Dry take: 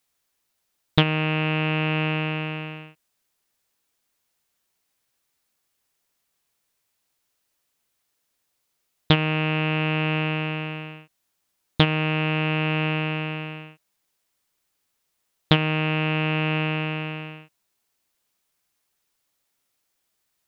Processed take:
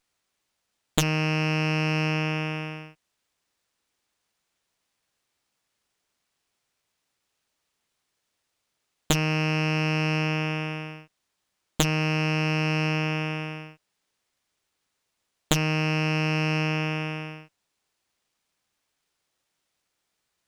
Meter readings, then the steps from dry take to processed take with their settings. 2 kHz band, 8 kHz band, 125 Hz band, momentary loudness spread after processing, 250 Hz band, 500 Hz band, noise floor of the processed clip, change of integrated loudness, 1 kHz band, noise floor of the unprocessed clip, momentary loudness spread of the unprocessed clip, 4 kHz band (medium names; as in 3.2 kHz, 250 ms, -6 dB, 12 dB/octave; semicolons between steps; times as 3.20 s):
-2.0 dB, no reading, -1.5 dB, 12 LU, -1.5 dB, -2.5 dB, -80 dBFS, -2.0 dB, -2.5 dB, -76 dBFS, 14 LU, -3.0 dB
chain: Chebyshev shaper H 4 -18 dB, 6 -11 dB, 7 -9 dB, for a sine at -1 dBFS; sliding maximum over 3 samples; trim -4.5 dB